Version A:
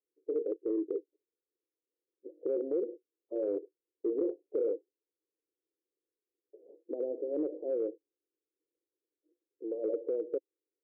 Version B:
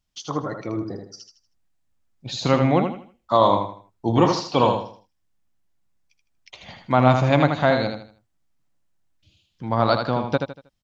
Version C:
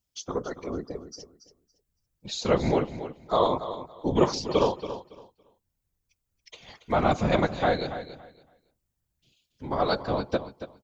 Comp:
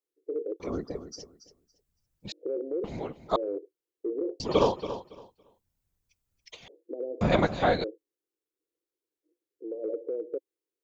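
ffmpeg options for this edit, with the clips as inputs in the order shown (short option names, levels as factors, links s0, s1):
-filter_complex "[2:a]asplit=4[s0][s1][s2][s3];[0:a]asplit=5[s4][s5][s6][s7][s8];[s4]atrim=end=0.602[s9];[s0]atrim=start=0.598:end=2.322[s10];[s5]atrim=start=2.318:end=2.842[s11];[s1]atrim=start=2.838:end=3.362[s12];[s6]atrim=start=3.358:end=4.402[s13];[s2]atrim=start=4.398:end=6.682[s14];[s7]atrim=start=6.678:end=7.212[s15];[s3]atrim=start=7.208:end=7.842[s16];[s8]atrim=start=7.838[s17];[s9][s10]acrossfade=d=0.004:c1=hsin:c2=hsin[s18];[s18][s11]acrossfade=d=0.004:c1=hsin:c2=hsin[s19];[s19][s12]acrossfade=d=0.004:c1=hsin:c2=hsin[s20];[s20][s13]acrossfade=d=0.004:c1=hsin:c2=hsin[s21];[s21][s14]acrossfade=d=0.004:c1=hsin:c2=hsin[s22];[s22][s15]acrossfade=d=0.004:c1=hsin:c2=hsin[s23];[s23][s16]acrossfade=d=0.004:c1=hsin:c2=hsin[s24];[s24][s17]acrossfade=d=0.004:c1=hsin:c2=hsin"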